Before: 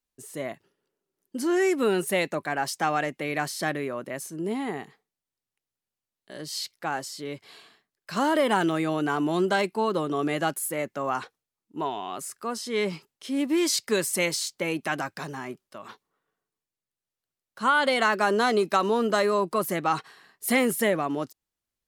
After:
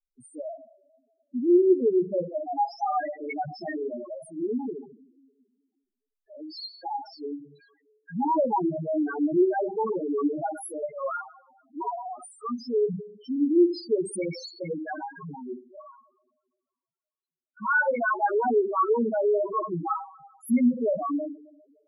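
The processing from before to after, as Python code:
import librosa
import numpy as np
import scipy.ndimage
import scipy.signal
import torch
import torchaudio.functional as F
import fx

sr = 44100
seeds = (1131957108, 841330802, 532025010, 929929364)

y = fx.cheby1_bandpass(x, sr, low_hz=130.0, high_hz=5100.0, order=5, at=(15.85, 17.84), fade=0.02)
y = fx.rev_double_slope(y, sr, seeds[0], early_s=0.5, late_s=1.9, knee_db=-19, drr_db=1.0)
y = fx.spec_topn(y, sr, count=2)
y = y * librosa.db_to_amplitude(2.0)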